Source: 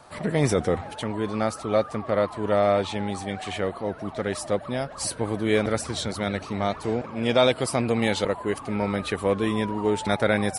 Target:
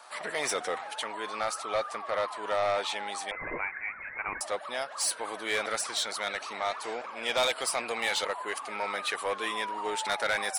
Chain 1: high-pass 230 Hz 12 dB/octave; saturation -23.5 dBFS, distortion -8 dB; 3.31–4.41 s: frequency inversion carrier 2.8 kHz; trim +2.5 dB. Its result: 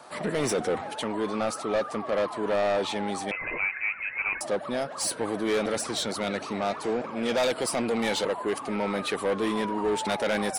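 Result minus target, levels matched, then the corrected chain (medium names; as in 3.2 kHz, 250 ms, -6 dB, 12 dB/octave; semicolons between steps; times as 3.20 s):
250 Hz band +13.0 dB
high-pass 900 Hz 12 dB/octave; saturation -23.5 dBFS, distortion -12 dB; 3.31–4.41 s: frequency inversion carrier 2.8 kHz; trim +2.5 dB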